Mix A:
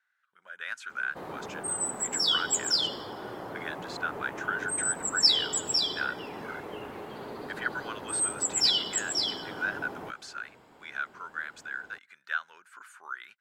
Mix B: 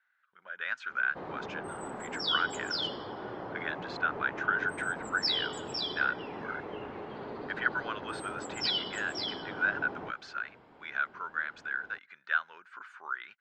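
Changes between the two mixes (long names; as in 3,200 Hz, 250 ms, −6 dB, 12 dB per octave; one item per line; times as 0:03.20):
speech +4.0 dB
master: add high-frequency loss of the air 210 metres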